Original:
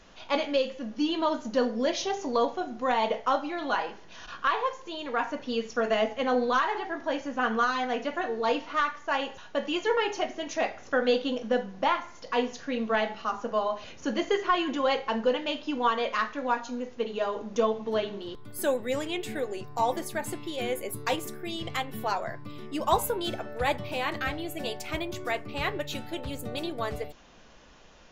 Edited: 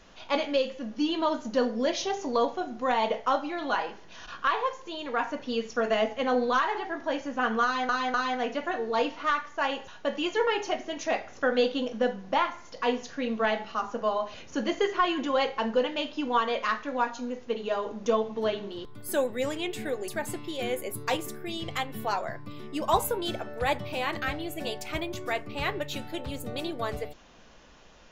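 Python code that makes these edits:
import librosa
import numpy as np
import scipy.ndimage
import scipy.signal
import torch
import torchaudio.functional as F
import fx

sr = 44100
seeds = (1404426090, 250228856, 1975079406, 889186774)

y = fx.edit(x, sr, fx.repeat(start_s=7.64, length_s=0.25, count=3),
    fx.cut(start_s=19.58, length_s=0.49), tone=tone)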